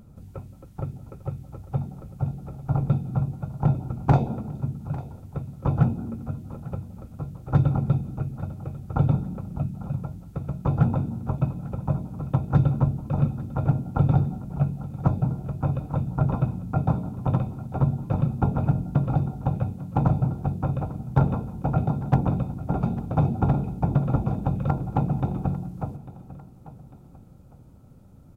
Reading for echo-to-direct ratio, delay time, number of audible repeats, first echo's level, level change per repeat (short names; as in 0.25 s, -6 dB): -16.0 dB, 0.848 s, 2, -17.0 dB, -6.0 dB